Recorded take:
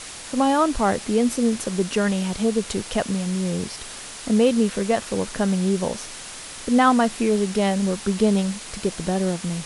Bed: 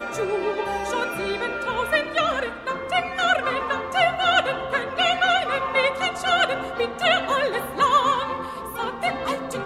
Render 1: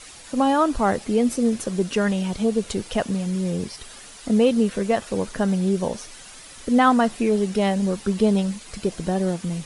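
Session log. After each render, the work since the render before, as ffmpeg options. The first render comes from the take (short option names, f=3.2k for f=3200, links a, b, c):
-af "afftdn=nr=9:nf=-37"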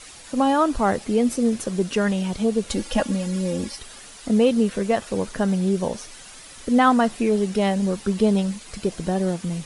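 -filter_complex "[0:a]asettb=1/sr,asplit=3[a][b][c];[a]atrim=end=2.704[d];[b]atrim=start=2.7:end=3.79,asetpts=PTS-STARTPTS,afade=t=in:d=0.004:c=qsin,afade=t=out:st=1.086:d=0.004:c=qsin,aecho=1:1:3.6:0.89,atrim=end_sample=48069[e];[c]atrim=start=3.786[f];[d][e]acrossfade=d=0.004:c1=hsin:c2=qsin[g];[g][f]acrossfade=d=0.004:c1=qsin:c2=hsin"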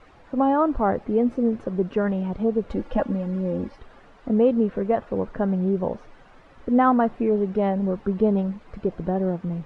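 -af "lowpass=1.2k,equalizer=f=210:t=o:w=0.41:g=-2.5"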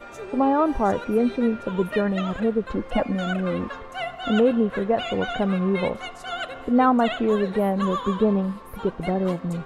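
-filter_complex "[1:a]volume=-11dB[a];[0:a][a]amix=inputs=2:normalize=0"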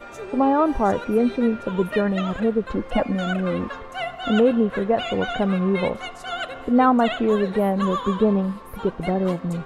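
-af "volume=1.5dB"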